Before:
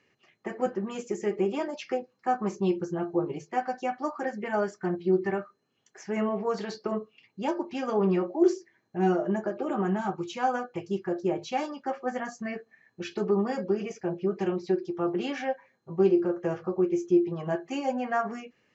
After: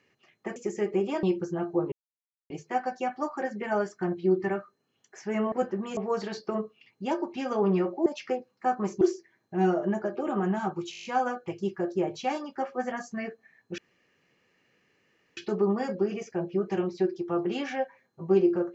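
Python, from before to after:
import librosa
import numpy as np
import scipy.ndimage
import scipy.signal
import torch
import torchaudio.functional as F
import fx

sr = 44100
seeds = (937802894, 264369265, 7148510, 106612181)

y = fx.edit(x, sr, fx.move(start_s=0.56, length_s=0.45, to_s=6.34),
    fx.move(start_s=1.68, length_s=0.95, to_s=8.43),
    fx.insert_silence(at_s=3.32, length_s=0.58),
    fx.stutter(start_s=10.33, slice_s=0.02, count=8),
    fx.insert_room_tone(at_s=13.06, length_s=1.59), tone=tone)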